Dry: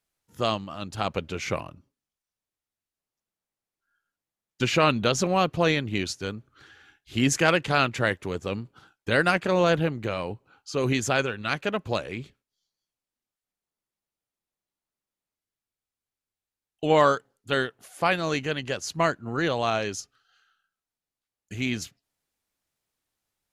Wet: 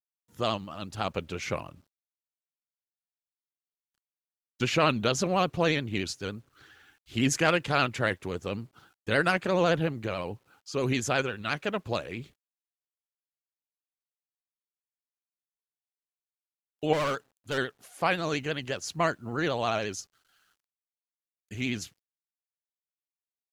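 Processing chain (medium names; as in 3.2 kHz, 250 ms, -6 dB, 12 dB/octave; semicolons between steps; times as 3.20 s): bit crusher 11-bit; vibrato 14 Hz 71 cents; 16.93–17.58 s: hard clipper -23 dBFS, distortion -14 dB; trim -3 dB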